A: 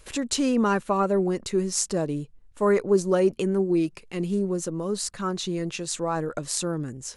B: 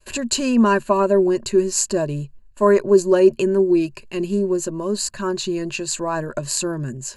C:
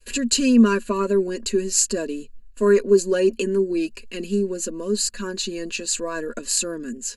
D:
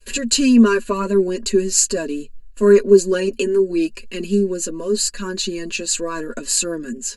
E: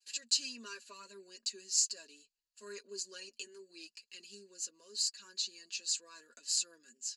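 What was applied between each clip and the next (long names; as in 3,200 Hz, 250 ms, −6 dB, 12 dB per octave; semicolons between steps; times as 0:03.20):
downward expander −45 dBFS; EQ curve with evenly spaced ripples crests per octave 1.4, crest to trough 11 dB; level +3.5 dB
phaser with its sweep stopped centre 340 Hz, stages 4; comb filter 4.2 ms, depth 72%
flanger 0.71 Hz, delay 4.8 ms, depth 2.9 ms, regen −28%; level +7 dB
resonant band-pass 5,100 Hz, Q 2.3; level −8 dB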